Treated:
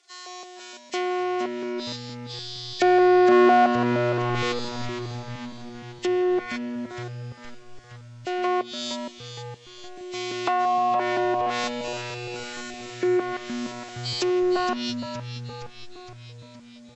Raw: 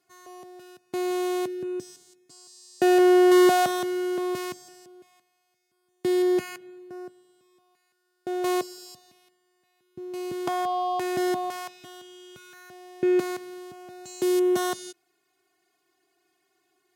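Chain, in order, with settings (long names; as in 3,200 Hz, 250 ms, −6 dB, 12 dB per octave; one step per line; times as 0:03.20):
hearing-aid frequency compression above 1,800 Hz 1.5 to 1
treble cut that deepens with the level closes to 1,200 Hz, closed at −22.5 dBFS
Bessel high-pass filter 560 Hz, order 2
high-shelf EQ 2,500 Hz +11.5 dB
echo with shifted repeats 466 ms, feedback 62%, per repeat −120 Hz, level −9.5 dB
level +6 dB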